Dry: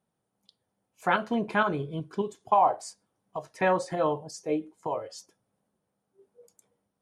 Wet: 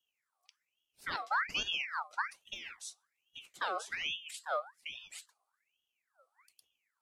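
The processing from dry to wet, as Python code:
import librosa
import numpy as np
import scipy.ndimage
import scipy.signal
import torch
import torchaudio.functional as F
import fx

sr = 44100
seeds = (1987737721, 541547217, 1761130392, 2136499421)

y = scipy.signal.sosfilt(scipy.signal.cheby1(2, 1.0, [300.0, 2900.0], 'bandstop', fs=sr, output='sos'), x)
y = fx.ring_lfo(y, sr, carrier_hz=2000.0, swing_pct=55, hz=1.2)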